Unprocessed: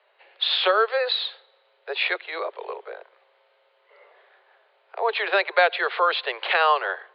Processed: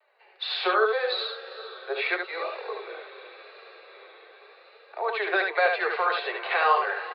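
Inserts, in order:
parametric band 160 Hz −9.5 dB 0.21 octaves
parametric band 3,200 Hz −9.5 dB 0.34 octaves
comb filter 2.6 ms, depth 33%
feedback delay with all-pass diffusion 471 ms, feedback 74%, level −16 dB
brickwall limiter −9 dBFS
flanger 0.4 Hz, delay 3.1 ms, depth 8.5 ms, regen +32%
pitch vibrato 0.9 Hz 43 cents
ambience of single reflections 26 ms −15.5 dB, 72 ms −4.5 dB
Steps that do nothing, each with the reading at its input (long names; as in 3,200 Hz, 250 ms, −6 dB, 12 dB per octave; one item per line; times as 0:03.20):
parametric band 160 Hz: nothing at its input below 300 Hz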